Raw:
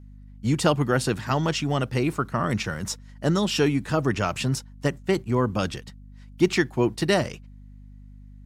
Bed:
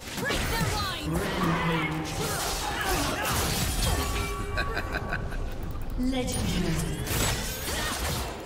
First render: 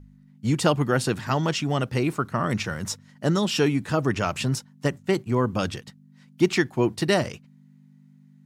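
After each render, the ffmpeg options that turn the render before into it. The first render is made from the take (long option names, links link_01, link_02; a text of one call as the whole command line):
ffmpeg -i in.wav -af "bandreject=frequency=50:width_type=h:width=4,bandreject=frequency=100:width_type=h:width=4" out.wav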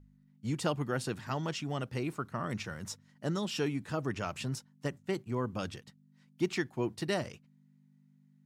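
ffmpeg -i in.wav -af "volume=-11dB" out.wav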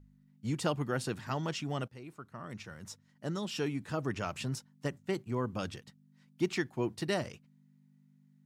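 ffmpeg -i in.wav -filter_complex "[0:a]asplit=2[link_01][link_02];[link_01]atrim=end=1.88,asetpts=PTS-STARTPTS,afade=type=out:start_time=1.876:duration=0.004:curve=hsin:silence=0.16788[link_03];[link_02]atrim=start=1.88,asetpts=PTS-STARTPTS,afade=type=in:duration=2.2:silence=0.16788[link_04];[link_03][link_04]concat=n=2:v=0:a=1" out.wav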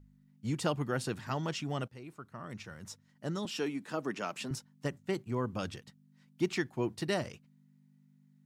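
ffmpeg -i in.wav -filter_complex "[0:a]asettb=1/sr,asplit=3[link_01][link_02][link_03];[link_01]atrim=end=3.454[link_04];[link_02]atrim=start=3.45:end=4.51,asetpts=PTS-STARTPTS,afade=type=in:duration=0.004:curve=qsin,afade=type=out:start_time=1.056:duration=0.004:curve=qsin,highpass=frequency=190:width=0.5412,highpass=frequency=190:width=1.3066[link_05];[link_03]atrim=start=4.506[link_06];[link_04][link_05]acrossfade=duration=0.004:curve1=hsin:curve2=qsin[link_07];[link_07][link_06]acrossfade=duration=0.004:curve1=qsin:curve2=hsin" out.wav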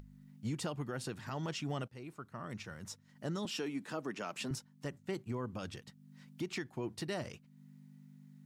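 ffmpeg -i in.wav -af "alimiter=level_in=5dB:limit=-24dB:level=0:latency=1:release=180,volume=-5dB,acompressor=mode=upward:threshold=-47dB:ratio=2.5" out.wav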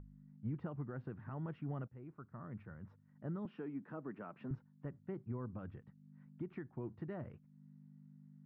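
ffmpeg -i in.wav -af "lowpass=frequency=1500:width=0.5412,lowpass=frequency=1500:width=1.3066,equalizer=frequency=770:width=0.4:gain=-8.5" out.wav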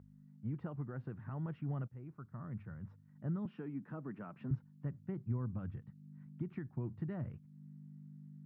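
ffmpeg -i in.wav -af "highpass=91,asubboost=boost=3.5:cutoff=200" out.wav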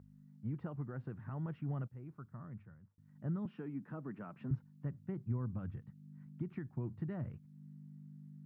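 ffmpeg -i in.wav -filter_complex "[0:a]asplit=2[link_01][link_02];[link_01]atrim=end=2.98,asetpts=PTS-STARTPTS,afade=type=out:start_time=2.2:duration=0.78[link_03];[link_02]atrim=start=2.98,asetpts=PTS-STARTPTS,afade=type=in:duration=0.004:curve=hsin[link_04];[link_03][link_04]concat=n=2:v=0:a=1" out.wav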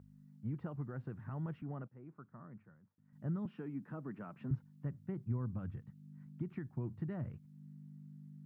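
ffmpeg -i in.wav -filter_complex "[0:a]asettb=1/sr,asplit=3[link_01][link_02][link_03];[link_01]atrim=end=1.624[link_04];[link_02]atrim=start=1.62:end=3.13,asetpts=PTS-STARTPTS,afade=type=in:duration=0.004:curve=qsin,afade=type=out:start_time=1.506:duration=0.004:curve=qsin,highpass=190,lowpass=2100[link_05];[link_03]atrim=start=3.126[link_06];[link_04][link_05]acrossfade=duration=0.004:curve1=hsin:curve2=qsin[link_07];[link_07][link_06]acrossfade=duration=0.004:curve1=qsin:curve2=hsin" out.wav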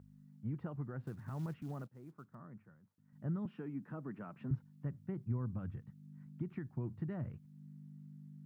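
ffmpeg -i in.wav -filter_complex "[0:a]asettb=1/sr,asplit=3[link_01][link_02][link_03];[link_01]atrim=end=1.034[link_04];[link_02]atrim=start=1.03:end=2.35,asetpts=PTS-STARTPTS,afade=type=in:duration=0.004:curve=qsin,afade=type=out:start_time=1.316:duration=0.004:curve=qsin,acrusher=bits=7:mode=log:mix=0:aa=0.000001[link_05];[link_03]atrim=start=2.346[link_06];[link_04][link_05]acrossfade=duration=0.004:curve1=hsin:curve2=qsin[link_07];[link_07][link_06]acrossfade=duration=0.004:curve1=qsin:curve2=hsin" out.wav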